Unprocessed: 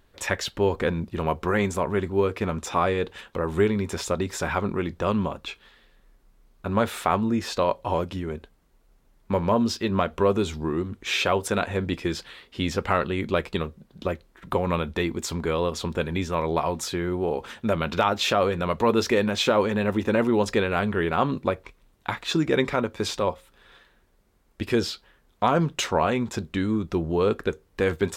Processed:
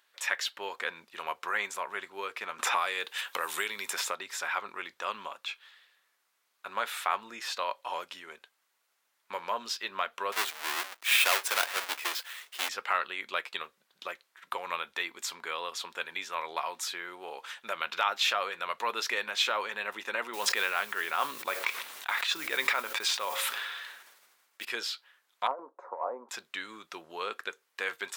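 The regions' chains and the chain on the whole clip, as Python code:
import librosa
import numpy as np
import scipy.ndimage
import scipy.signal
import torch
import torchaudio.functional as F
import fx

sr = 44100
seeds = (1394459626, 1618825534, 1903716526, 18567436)

y = fx.chain(x, sr, fx.high_shelf(hz=6600.0, db=11.0),
    fx.band_squash(depth_pct=100), at=(2.59, 4.15))
y = fx.chain(y, sr, fx.halfwave_hold(),
    fx.highpass(hz=350.0, slope=12), at=(10.32, 12.69))
y = fx.chain(y, sr, fx.highpass(hz=43.0, slope=12),
    fx.mod_noise(seeds[0], snr_db=23),
    fx.sustainer(db_per_s=34.0), at=(20.33, 24.65))
y = fx.chain(y, sr, fx.ellip_bandpass(low_hz=260.0, high_hz=1000.0, order=3, stop_db=50),
    fx.peak_eq(hz=540.0, db=7.0, octaves=0.42),
    fx.over_compress(threshold_db=-21.0, ratio=-0.5), at=(25.47, 26.29))
y = scipy.signal.sosfilt(scipy.signal.butter(2, 1300.0, 'highpass', fs=sr, output='sos'), y)
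y = fx.dynamic_eq(y, sr, hz=7200.0, q=0.73, threshold_db=-45.0, ratio=4.0, max_db=-4)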